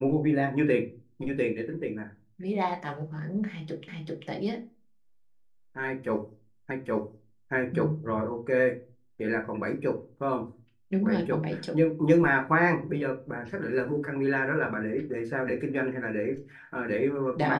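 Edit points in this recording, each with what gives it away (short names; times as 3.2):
3.88 repeat of the last 0.39 s
6.71 repeat of the last 0.82 s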